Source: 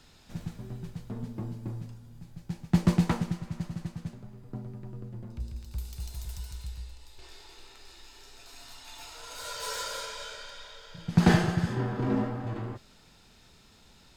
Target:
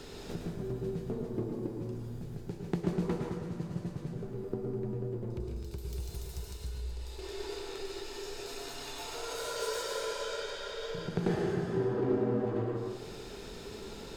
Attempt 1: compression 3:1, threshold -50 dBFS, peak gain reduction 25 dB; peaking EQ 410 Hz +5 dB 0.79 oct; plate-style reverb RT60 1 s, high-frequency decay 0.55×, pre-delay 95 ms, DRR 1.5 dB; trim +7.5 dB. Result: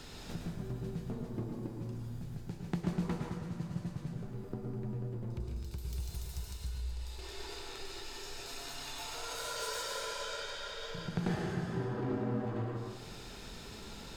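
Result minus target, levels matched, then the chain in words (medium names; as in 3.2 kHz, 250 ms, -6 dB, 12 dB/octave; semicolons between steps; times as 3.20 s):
500 Hz band -5.0 dB
compression 3:1, threshold -50 dBFS, peak gain reduction 25 dB; peaking EQ 410 Hz +15.5 dB 0.79 oct; plate-style reverb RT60 1 s, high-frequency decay 0.55×, pre-delay 95 ms, DRR 1.5 dB; trim +7.5 dB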